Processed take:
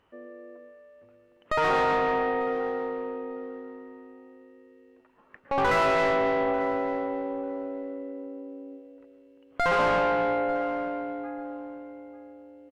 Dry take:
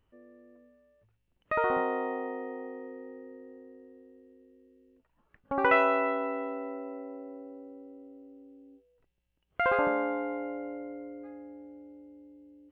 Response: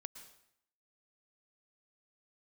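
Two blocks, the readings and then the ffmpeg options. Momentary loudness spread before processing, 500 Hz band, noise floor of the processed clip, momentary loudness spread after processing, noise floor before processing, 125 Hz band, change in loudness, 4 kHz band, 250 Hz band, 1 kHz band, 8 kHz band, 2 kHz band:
22 LU, +5.5 dB, -60 dBFS, 22 LU, -75 dBFS, +13.0 dB, +3.5 dB, +11.0 dB, +4.0 dB, +5.5 dB, no reading, +3.5 dB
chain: -filter_complex "[1:a]atrim=start_sample=2205,afade=t=out:st=0.32:d=0.01,atrim=end_sample=14553[s0];[0:a][s0]afir=irnorm=-1:irlink=0,asplit=2[s1][s2];[s2]highpass=f=720:p=1,volume=25.1,asoftclip=type=tanh:threshold=0.188[s3];[s1][s3]amix=inputs=2:normalize=0,lowpass=f=1500:p=1,volume=0.501,asplit=2[s4][s5];[s5]adelay=894,lowpass=f=3200:p=1,volume=0.158,asplit=2[s6][s7];[s7]adelay=894,lowpass=f=3200:p=1,volume=0.18[s8];[s4][s6][s8]amix=inputs=3:normalize=0"

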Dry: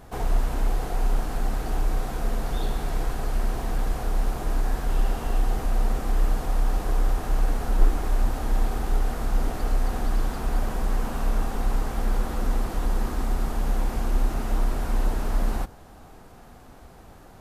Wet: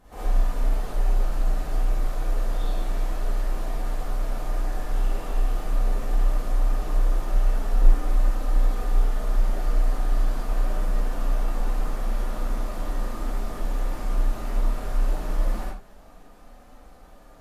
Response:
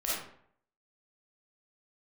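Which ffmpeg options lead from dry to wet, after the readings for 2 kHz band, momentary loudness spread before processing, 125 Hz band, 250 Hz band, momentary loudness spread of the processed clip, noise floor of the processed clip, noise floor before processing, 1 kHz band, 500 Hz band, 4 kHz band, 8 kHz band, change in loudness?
-3.0 dB, 3 LU, -1.0 dB, -4.0 dB, 5 LU, -48 dBFS, -47 dBFS, -3.0 dB, -2.0 dB, -3.0 dB, -3.5 dB, 0.0 dB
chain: -filter_complex "[0:a]flanger=delay=3.8:depth=9.8:regen=-50:speed=0.12:shape=sinusoidal[s0];[1:a]atrim=start_sample=2205,atrim=end_sample=6174,asetrate=41013,aresample=44100[s1];[s0][s1]afir=irnorm=-1:irlink=0,volume=0.562"

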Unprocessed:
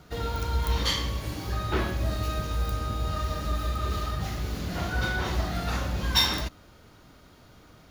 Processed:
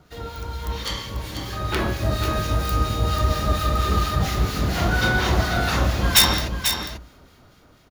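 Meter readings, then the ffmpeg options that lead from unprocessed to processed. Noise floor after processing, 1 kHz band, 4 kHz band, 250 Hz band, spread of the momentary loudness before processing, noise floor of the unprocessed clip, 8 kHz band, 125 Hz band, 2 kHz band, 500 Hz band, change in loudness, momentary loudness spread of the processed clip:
-53 dBFS, +7.5 dB, +6.0 dB, +7.0 dB, 7 LU, -54 dBFS, +11.5 dB, +6.5 dB, +8.5 dB, +7.0 dB, +7.0 dB, 13 LU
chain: -filter_complex "[0:a]aeval=exprs='(mod(5.01*val(0)+1,2)-1)/5.01':c=same,bandreject=f=58.6:t=h:w=4,bandreject=f=117.2:t=h:w=4,bandreject=f=175.8:t=h:w=4,bandreject=f=234.4:t=h:w=4,bandreject=f=293:t=h:w=4,acrossover=split=1500[s0][s1];[s0]aeval=exprs='val(0)*(1-0.5/2+0.5/2*cos(2*PI*4.3*n/s))':c=same[s2];[s1]aeval=exprs='val(0)*(1-0.5/2-0.5/2*cos(2*PI*4.3*n/s))':c=same[s3];[s2][s3]amix=inputs=2:normalize=0,asoftclip=type=hard:threshold=0.178,dynaudnorm=f=500:g=7:m=3.76,aecho=1:1:491:0.422"

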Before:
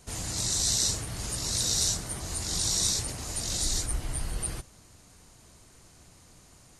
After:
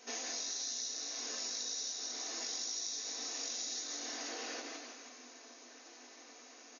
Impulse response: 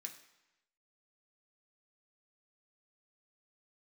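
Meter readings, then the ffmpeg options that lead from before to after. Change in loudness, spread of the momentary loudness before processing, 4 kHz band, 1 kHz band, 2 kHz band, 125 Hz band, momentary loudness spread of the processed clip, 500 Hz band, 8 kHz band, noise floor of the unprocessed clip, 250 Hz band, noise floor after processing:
-10.5 dB, 9 LU, -8.5 dB, -6.0 dB, -4.0 dB, under -40 dB, 17 LU, -6.0 dB, -10.0 dB, -56 dBFS, -11.5 dB, -56 dBFS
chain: -filter_complex "[0:a]asplit=8[s0][s1][s2][s3][s4][s5][s6][s7];[s1]adelay=162,afreqshift=-40,volume=0.447[s8];[s2]adelay=324,afreqshift=-80,volume=0.251[s9];[s3]adelay=486,afreqshift=-120,volume=0.14[s10];[s4]adelay=648,afreqshift=-160,volume=0.0785[s11];[s5]adelay=810,afreqshift=-200,volume=0.0442[s12];[s6]adelay=972,afreqshift=-240,volume=0.0245[s13];[s7]adelay=1134,afreqshift=-280,volume=0.0138[s14];[s0][s8][s9][s10][s11][s12][s13][s14]amix=inputs=8:normalize=0,acontrast=86,equalizer=f=650:t=o:w=0.84:g=5[s15];[1:a]atrim=start_sample=2205[s16];[s15][s16]afir=irnorm=-1:irlink=0,afftfilt=real='re*between(b*sr/4096,230,6900)':imag='im*between(b*sr/4096,230,6900)':win_size=4096:overlap=0.75,acompressor=threshold=0.0112:ratio=12,adynamicequalizer=threshold=0.002:dfrequency=4900:dqfactor=0.7:tfrequency=4900:tqfactor=0.7:attack=5:release=100:ratio=0.375:range=1.5:mode=boostabove:tftype=highshelf"

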